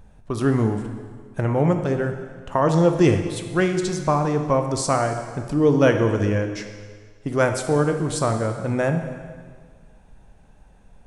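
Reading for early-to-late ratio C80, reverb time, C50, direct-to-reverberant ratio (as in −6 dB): 9.0 dB, 1.7 s, 7.5 dB, 5.5 dB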